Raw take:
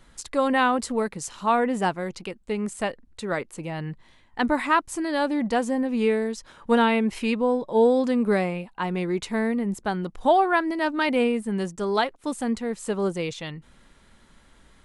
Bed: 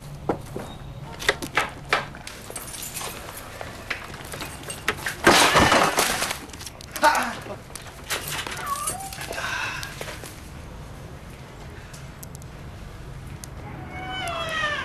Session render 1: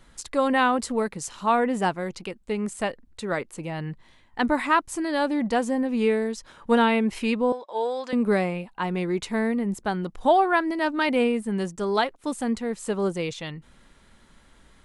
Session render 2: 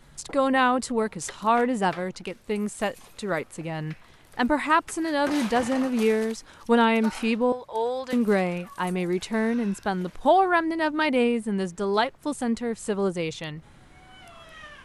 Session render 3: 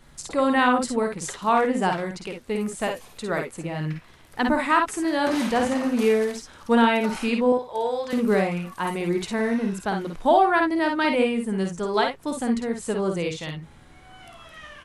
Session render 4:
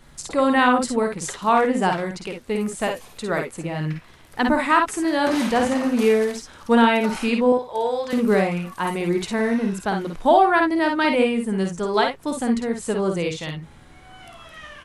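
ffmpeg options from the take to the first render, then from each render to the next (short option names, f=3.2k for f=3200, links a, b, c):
-filter_complex "[0:a]asettb=1/sr,asplit=3[a][b][c];[a]atrim=end=7.524[d];[b]atrim=start=7.52:end=8.13,asetpts=PTS-STARTPTS,afade=t=in:d=0.004:c=qsin,afade=t=out:st=0.606:d=0.004:c=qsin,highpass=770,lowpass=6.8k[e];[c]atrim=start=8.126[f];[d][e]acrossfade=d=0.004:c1=hsin:c2=qsin[g];[g][f]acrossfade=d=0.004:c1=qsin:c2=hsin"
-filter_complex "[1:a]volume=-19dB[a];[0:a][a]amix=inputs=2:normalize=0"
-af "aecho=1:1:52|64:0.531|0.355"
-af "volume=2.5dB"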